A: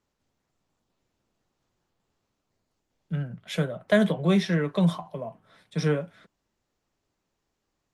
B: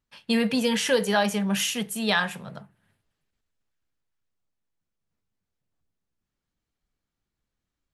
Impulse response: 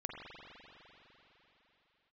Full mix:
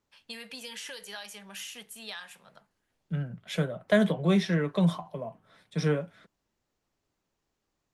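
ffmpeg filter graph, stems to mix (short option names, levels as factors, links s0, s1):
-filter_complex "[0:a]volume=0.794[s0];[1:a]highpass=f=940:p=1,acrossover=split=1700|4000[s1][s2][s3];[s1]acompressor=threshold=0.0141:ratio=4[s4];[s2]acompressor=threshold=0.0178:ratio=4[s5];[s3]acompressor=threshold=0.02:ratio=4[s6];[s4][s5][s6]amix=inputs=3:normalize=0,volume=0.355[s7];[s0][s7]amix=inputs=2:normalize=0"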